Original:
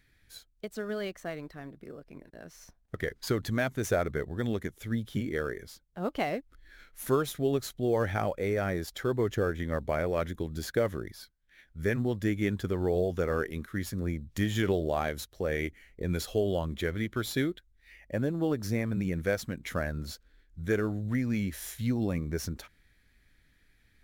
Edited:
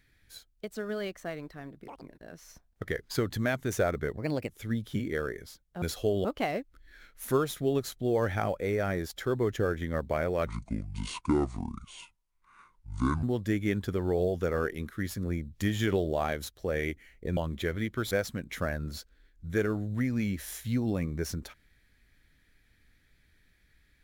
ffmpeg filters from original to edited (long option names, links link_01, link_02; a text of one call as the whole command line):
ffmpeg -i in.wav -filter_complex "[0:a]asplit=11[link_01][link_02][link_03][link_04][link_05][link_06][link_07][link_08][link_09][link_10][link_11];[link_01]atrim=end=1.884[link_12];[link_02]atrim=start=1.88:end=2.14,asetpts=PTS-STARTPTS,asetrate=84231,aresample=44100,atrim=end_sample=6003,asetpts=PTS-STARTPTS[link_13];[link_03]atrim=start=2.136:end=4.304[link_14];[link_04]atrim=start=4.3:end=4.7,asetpts=PTS-STARTPTS,asetrate=56448,aresample=44100,atrim=end_sample=13781,asetpts=PTS-STARTPTS[link_15];[link_05]atrim=start=4.696:end=6.032[link_16];[link_06]atrim=start=16.128:end=16.562[link_17];[link_07]atrim=start=6.028:end=10.254[link_18];[link_08]atrim=start=10.25:end=11.99,asetpts=PTS-STARTPTS,asetrate=27783,aresample=44100[link_19];[link_09]atrim=start=11.986:end=16.132[link_20];[link_10]atrim=start=16.558:end=17.302[link_21];[link_11]atrim=start=19.248[link_22];[link_12][link_13]acrossfade=duration=0.004:curve1=hsin:curve2=hsin[link_23];[link_23][link_14]acrossfade=duration=0.004:curve1=hsin:curve2=hsin[link_24];[link_24][link_15]acrossfade=duration=0.004:curve1=hsin:curve2=hsin[link_25];[link_25][link_16]acrossfade=duration=0.004:curve1=hsin:curve2=hsin[link_26];[link_26][link_17]acrossfade=duration=0.004:curve1=hsin:curve2=hsin[link_27];[link_27][link_18]acrossfade=duration=0.004:curve1=hsin:curve2=hsin[link_28];[link_28][link_19]acrossfade=duration=0.004:curve1=hsin:curve2=hsin[link_29];[link_29][link_20]acrossfade=duration=0.004:curve1=hsin:curve2=hsin[link_30];[link_30][link_21]acrossfade=duration=0.004:curve1=hsin:curve2=hsin[link_31];[link_31][link_22]acrossfade=duration=0.004:curve1=hsin:curve2=hsin" out.wav